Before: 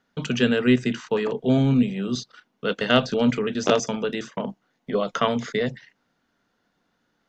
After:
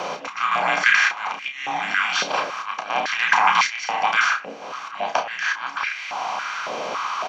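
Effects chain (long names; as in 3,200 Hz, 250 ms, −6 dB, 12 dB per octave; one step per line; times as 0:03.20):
compressor on every frequency bin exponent 0.4
dynamic equaliser 2,100 Hz, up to +6 dB, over −42 dBFS, Q 3.9
volume swells 714 ms
in parallel at +1 dB: downward compressor, threshold −31 dBFS, peak gain reduction 15.5 dB
on the sum: frequency shifter −420 Hz
double-tracking delay 32 ms −7 dB
on a send at −7.5 dB: convolution reverb RT60 0.40 s, pre-delay 3 ms
on the sum: high-pass on a step sequencer 3.6 Hz 530–2,100 Hz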